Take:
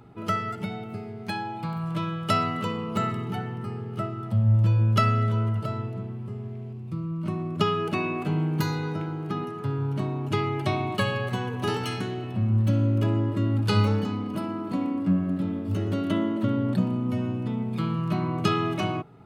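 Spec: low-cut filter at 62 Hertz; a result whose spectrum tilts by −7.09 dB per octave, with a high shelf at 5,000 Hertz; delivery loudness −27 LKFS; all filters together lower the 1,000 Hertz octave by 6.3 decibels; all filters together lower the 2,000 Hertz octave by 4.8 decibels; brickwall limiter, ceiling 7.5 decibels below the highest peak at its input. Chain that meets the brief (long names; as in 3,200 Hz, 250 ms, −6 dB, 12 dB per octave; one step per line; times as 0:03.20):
high-pass filter 62 Hz
parametric band 1,000 Hz −7.5 dB
parametric band 2,000 Hz −5 dB
high-shelf EQ 5,000 Hz +5.5 dB
level +2 dB
brickwall limiter −16 dBFS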